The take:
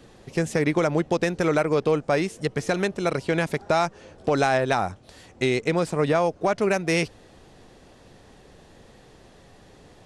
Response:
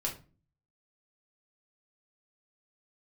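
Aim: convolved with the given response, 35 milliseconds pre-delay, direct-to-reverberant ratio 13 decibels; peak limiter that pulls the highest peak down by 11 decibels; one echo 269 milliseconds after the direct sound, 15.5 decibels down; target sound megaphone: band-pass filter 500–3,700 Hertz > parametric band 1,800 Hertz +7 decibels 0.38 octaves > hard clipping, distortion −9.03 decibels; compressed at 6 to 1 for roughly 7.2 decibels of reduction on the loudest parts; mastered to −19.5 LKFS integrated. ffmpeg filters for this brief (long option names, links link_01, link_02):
-filter_complex "[0:a]acompressor=threshold=-25dB:ratio=6,alimiter=level_in=0.5dB:limit=-24dB:level=0:latency=1,volume=-0.5dB,aecho=1:1:269:0.168,asplit=2[link_01][link_02];[1:a]atrim=start_sample=2205,adelay=35[link_03];[link_02][link_03]afir=irnorm=-1:irlink=0,volume=-16dB[link_04];[link_01][link_04]amix=inputs=2:normalize=0,highpass=500,lowpass=3700,equalizer=frequency=1800:width_type=o:width=0.38:gain=7,asoftclip=type=hard:threshold=-34.5dB,volume=21dB"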